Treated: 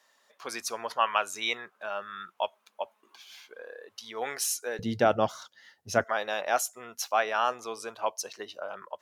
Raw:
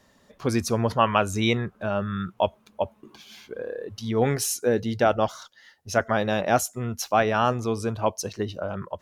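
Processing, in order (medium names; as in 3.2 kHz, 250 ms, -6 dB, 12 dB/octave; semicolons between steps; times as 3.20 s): high-pass 830 Hz 12 dB/octave, from 4.79 s 110 Hz, from 6.04 s 680 Hz; trim -2.5 dB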